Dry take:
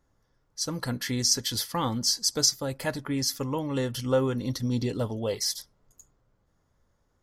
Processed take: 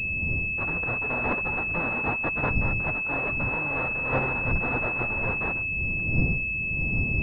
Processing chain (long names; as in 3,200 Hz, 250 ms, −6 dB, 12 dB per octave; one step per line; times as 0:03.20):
spectral envelope flattened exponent 0.1
wind on the microphone 140 Hz −32 dBFS
switching amplifier with a slow clock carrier 2,600 Hz